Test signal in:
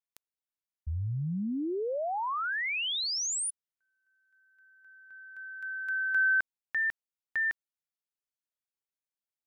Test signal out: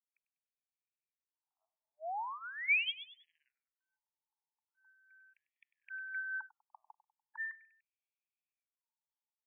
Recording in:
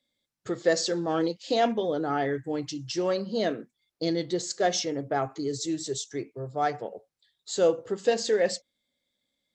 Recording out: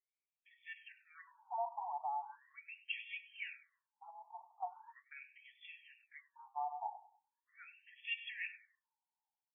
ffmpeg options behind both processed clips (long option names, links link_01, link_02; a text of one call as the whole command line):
ffmpeg -i in.wav -filter_complex "[0:a]aderivative,aecho=1:1:1.2:0.88,dynaudnorm=framelen=650:gausssize=3:maxgain=13dB,asplit=3[link_01][link_02][link_03];[link_01]bandpass=frequency=300:width_type=q:width=8,volume=0dB[link_04];[link_02]bandpass=frequency=870:width_type=q:width=8,volume=-6dB[link_05];[link_03]bandpass=frequency=2240:width_type=q:width=8,volume=-9dB[link_06];[link_04][link_05][link_06]amix=inputs=3:normalize=0,acrossover=split=430|2300[link_07][link_08][link_09];[link_08]acompressor=threshold=-55dB:ratio=10:release=172:knee=2.83:detection=peak[link_10];[link_07][link_10][link_09]amix=inputs=3:normalize=0,aphaser=in_gain=1:out_gain=1:delay=1.8:decay=0.3:speed=0.68:type=sinusoidal,highshelf=frequency=2500:gain=-11,asplit=2[link_11][link_12];[link_12]aecho=0:1:98|196|294:0.158|0.0586|0.0217[link_13];[link_11][link_13]amix=inputs=2:normalize=0,afftfilt=real='re*between(b*sr/1024,850*pow(2500/850,0.5+0.5*sin(2*PI*0.4*pts/sr))/1.41,850*pow(2500/850,0.5+0.5*sin(2*PI*0.4*pts/sr))*1.41)':imag='im*between(b*sr/1024,850*pow(2500/850,0.5+0.5*sin(2*PI*0.4*pts/sr))/1.41,850*pow(2500/850,0.5+0.5*sin(2*PI*0.4*pts/sr))*1.41)':win_size=1024:overlap=0.75,volume=17dB" out.wav